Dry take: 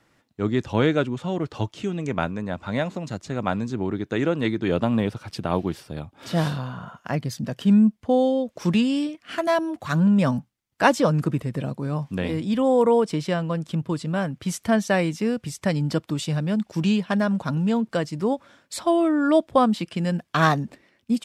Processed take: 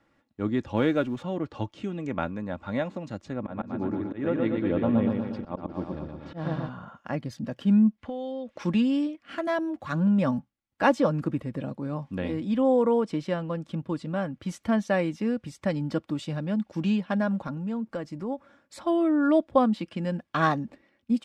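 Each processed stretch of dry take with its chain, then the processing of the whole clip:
0.76–1.23 G.711 law mismatch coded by mu + tone controls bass -1 dB, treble +3 dB
3.33–6.69 feedback echo 0.119 s, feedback 58%, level -3.5 dB + auto swell 0.143 s + tape spacing loss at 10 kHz 21 dB
7.98–8.64 bell 2300 Hz +12 dB 2.5 oct + compressor 4:1, threshold -30 dBFS
17.47–18.81 bell 3500 Hz -4.5 dB 1 oct + compressor 2.5:1, threshold -26 dBFS
whole clip: LPF 2200 Hz 6 dB/oct; comb 3.6 ms, depth 36%; gain -4 dB

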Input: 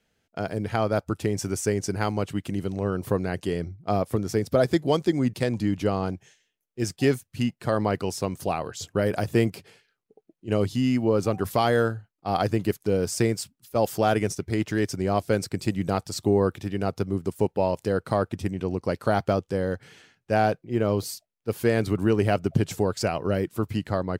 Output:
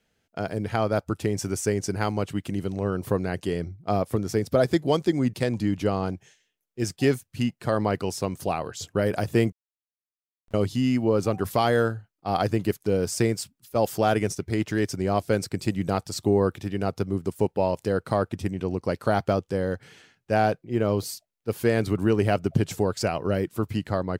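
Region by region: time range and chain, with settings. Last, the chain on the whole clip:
9.52–10.54 passive tone stack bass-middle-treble 10-0-1 + notches 60/120/180 Hz + Schmitt trigger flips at -41 dBFS
whole clip: dry

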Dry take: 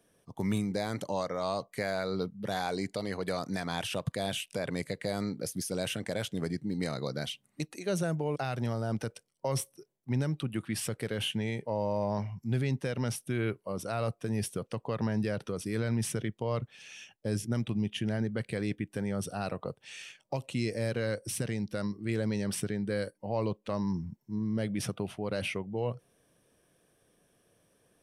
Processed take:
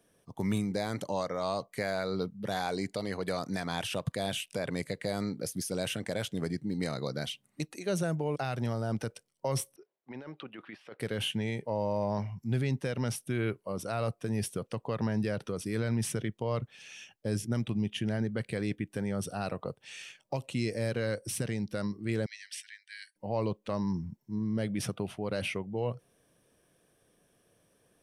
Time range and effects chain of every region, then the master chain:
9.76–11 HPF 490 Hz + negative-ratio compressor -43 dBFS + air absorption 310 m
22.26–23.16 steep high-pass 1700 Hz 72 dB/oct + air absorption 53 m
whole clip: dry

